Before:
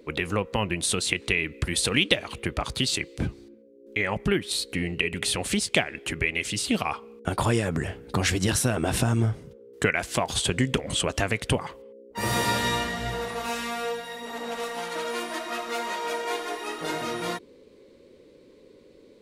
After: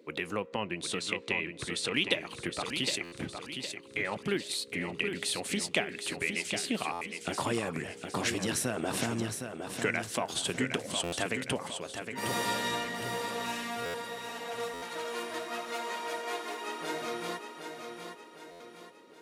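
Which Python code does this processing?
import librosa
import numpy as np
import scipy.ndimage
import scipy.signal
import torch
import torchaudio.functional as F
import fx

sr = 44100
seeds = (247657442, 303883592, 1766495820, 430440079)

p1 = scipy.signal.sosfilt(scipy.signal.butter(2, 180.0, 'highpass', fs=sr, output='sos'), x)
p2 = 10.0 ** (-10.5 / 20.0) * np.tanh(p1 / 10.0 ** (-10.5 / 20.0))
p3 = p1 + (p2 * librosa.db_to_amplitude(-11.0))
p4 = fx.air_absorb(p3, sr, metres=52.0, at=(0.46, 1.94))
p5 = p4 + fx.echo_feedback(p4, sr, ms=762, feedback_pct=45, wet_db=-7, dry=0)
p6 = fx.buffer_glitch(p5, sr, at_s=(3.03, 6.92, 11.03, 13.85, 14.73, 18.51), block=512, repeats=7)
y = p6 * librosa.db_to_amplitude(-8.5)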